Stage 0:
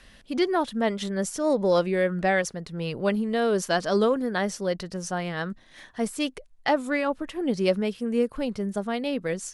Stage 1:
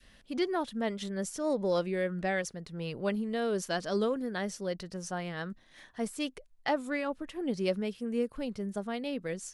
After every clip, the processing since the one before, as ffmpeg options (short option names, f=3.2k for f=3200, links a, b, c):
-af "adynamicequalizer=threshold=0.0126:dfrequency=950:dqfactor=0.86:tfrequency=950:tqfactor=0.86:attack=5:release=100:ratio=0.375:range=2:mode=cutabove:tftype=bell,volume=-6.5dB"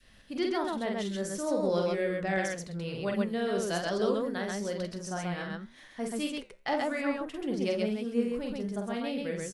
-af "aecho=1:1:46.65|131.2:0.631|0.794,flanger=delay=6.6:depth=9.2:regen=81:speed=0.99:shape=triangular,volume=3dB"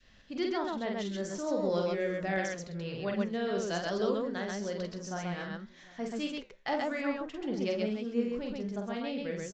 -af "aecho=1:1:752:0.0794,aresample=16000,aresample=44100,volume=-2dB"